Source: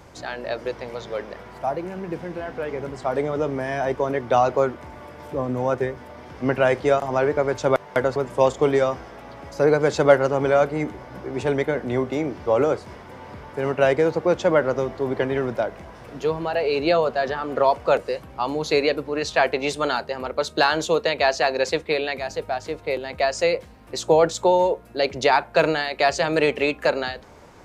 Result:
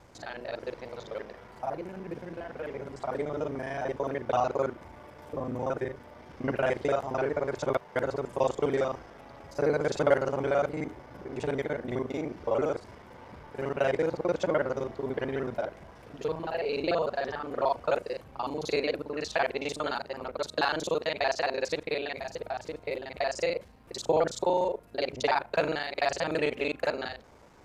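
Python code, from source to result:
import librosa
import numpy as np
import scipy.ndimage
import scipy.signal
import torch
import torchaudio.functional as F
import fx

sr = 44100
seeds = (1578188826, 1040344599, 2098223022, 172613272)

y = fx.local_reverse(x, sr, ms=37.0)
y = F.gain(torch.from_numpy(y), -8.0).numpy()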